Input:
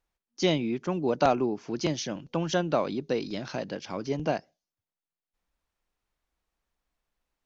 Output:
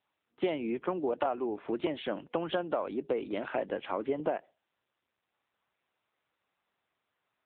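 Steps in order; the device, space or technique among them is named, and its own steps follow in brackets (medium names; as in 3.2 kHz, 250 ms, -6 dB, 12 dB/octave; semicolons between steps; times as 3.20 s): voicemail (band-pass 360–2600 Hz; compression 6:1, threshold -33 dBFS, peak gain reduction 14 dB; trim +6 dB; AMR-NB 7.95 kbps 8 kHz)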